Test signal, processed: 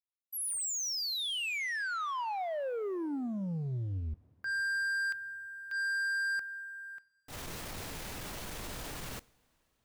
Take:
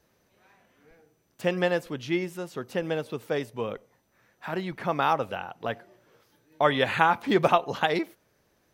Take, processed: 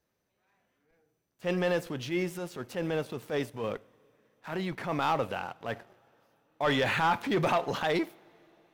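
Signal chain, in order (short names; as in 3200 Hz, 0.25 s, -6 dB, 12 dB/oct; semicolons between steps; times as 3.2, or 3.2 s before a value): transient shaper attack -8 dB, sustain +3 dB; sample leveller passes 2; two-slope reverb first 0.51 s, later 4.2 s, from -16 dB, DRR 19.5 dB; gain -8 dB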